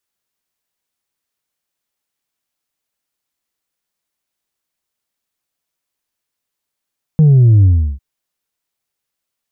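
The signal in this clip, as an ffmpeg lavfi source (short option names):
-f lavfi -i "aevalsrc='0.531*clip((0.8-t)/0.35,0,1)*tanh(1.26*sin(2*PI*160*0.8/log(65/160)*(exp(log(65/160)*t/0.8)-1)))/tanh(1.26)':d=0.8:s=44100"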